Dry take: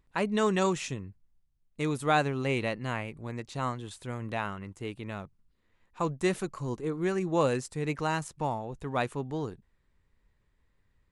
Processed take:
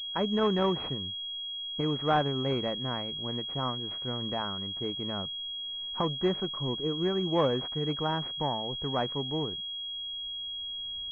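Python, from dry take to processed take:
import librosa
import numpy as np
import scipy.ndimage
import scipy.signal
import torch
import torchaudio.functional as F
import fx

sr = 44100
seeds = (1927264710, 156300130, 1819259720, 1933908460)

y = fx.recorder_agc(x, sr, target_db=-22.5, rise_db_per_s=8.3, max_gain_db=30)
y = fx.peak_eq(y, sr, hz=110.0, db=-7.0, octaves=0.22)
y = fx.pwm(y, sr, carrier_hz=3300.0)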